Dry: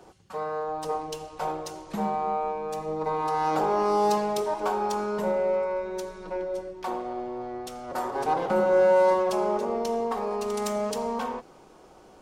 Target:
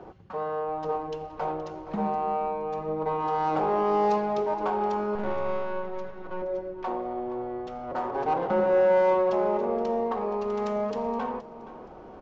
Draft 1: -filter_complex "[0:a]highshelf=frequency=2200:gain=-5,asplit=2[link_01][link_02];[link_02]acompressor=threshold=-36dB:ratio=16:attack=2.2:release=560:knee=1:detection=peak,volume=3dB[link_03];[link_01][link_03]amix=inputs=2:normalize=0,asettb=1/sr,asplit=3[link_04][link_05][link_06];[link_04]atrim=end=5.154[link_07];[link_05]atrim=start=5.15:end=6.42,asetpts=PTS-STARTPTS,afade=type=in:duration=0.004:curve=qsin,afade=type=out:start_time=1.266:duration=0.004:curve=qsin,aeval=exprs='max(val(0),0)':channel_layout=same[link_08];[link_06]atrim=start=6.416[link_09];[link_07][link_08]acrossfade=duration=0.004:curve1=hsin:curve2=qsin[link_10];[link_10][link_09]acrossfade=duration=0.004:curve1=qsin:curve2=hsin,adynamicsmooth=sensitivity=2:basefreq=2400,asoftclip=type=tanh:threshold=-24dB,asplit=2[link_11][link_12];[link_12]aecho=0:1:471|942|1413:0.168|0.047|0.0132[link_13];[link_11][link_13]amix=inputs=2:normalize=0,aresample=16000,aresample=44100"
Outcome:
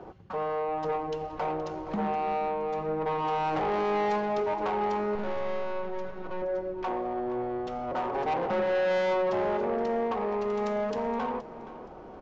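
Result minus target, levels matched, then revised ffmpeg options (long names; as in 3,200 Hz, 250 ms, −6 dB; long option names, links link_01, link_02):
soft clipping: distortion +14 dB; downward compressor: peak gain reduction −8.5 dB
-filter_complex "[0:a]highshelf=frequency=2200:gain=-5,asplit=2[link_01][link_02];[link_02]acompressor=threshold=-45dB:ratio=16:attack=2.2:release=560:knee=1:detection=peak,volume=3dB[link_03];[link_01][link_03]amix=inputs=2:normalize=0,asettb=1/sr,asplit=3[link_04][link_05][link_06];[link_04]atrim=end=5.154[link_07];[link_05]atrim=start=5.15:end=6.42,asetpts=PTS-STARTPTS,afade=type=in:duration=0.004:curve=qsin,afade=type=out:start_time=1.266:duration=0.004:curve=qsin,aeval=exprs='max(val(0),0)':channel_layout=same[link_08];[link_06]atrim=start=6.416[link_09];[link_07][link_08]acrossfade=duration=0.004:curve1=hsin:curve2=qsin[link_10];[link_10][link_09]acrossfade=duration=0.004:curve1=qsin:curve2=hsin,adynamicsmooth=sensitivity=2:basefreq=2400,asoftclip=type=tanh:threshold=-13dB,asplit=2[link_11][link_12];[link_12]aecho=0:1:471|942|1413:0.168|0.047|0.0132[link_13];[link_11][link_13]amix=inputs=2:normalize=0,aresample=16000,aresample=44100"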